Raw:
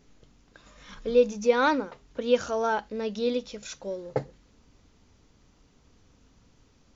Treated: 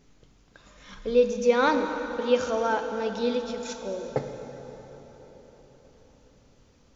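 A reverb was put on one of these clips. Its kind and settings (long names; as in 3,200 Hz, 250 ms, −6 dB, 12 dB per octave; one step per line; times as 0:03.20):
dense smooth reverb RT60 4.8 s, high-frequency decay 0.75×, DRR 5.5 dB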